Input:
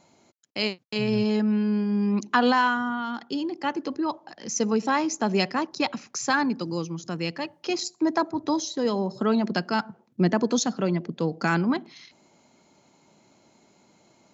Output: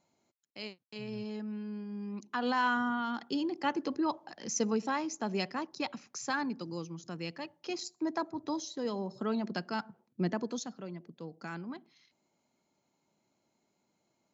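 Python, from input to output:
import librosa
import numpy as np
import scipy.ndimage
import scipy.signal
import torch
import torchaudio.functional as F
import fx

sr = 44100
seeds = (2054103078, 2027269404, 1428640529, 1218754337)

y = fx.gain(x, sr, db=fx.line((2.27, -16.0), (2.77, -4.0), (4.43, -4.0), (5.01, -10.0), (10.29, -10.0), (10.83, -18.0)))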